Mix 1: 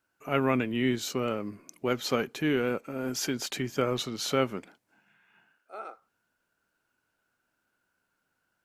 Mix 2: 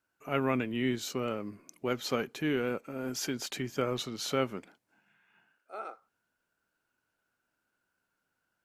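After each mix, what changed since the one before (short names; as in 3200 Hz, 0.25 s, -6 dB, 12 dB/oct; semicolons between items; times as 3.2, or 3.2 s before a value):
first voice -3.5 dB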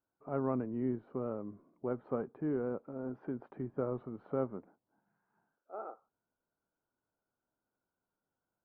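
first voice -3.5 dB; master: add LPF 1100 Hz 24 dB/oct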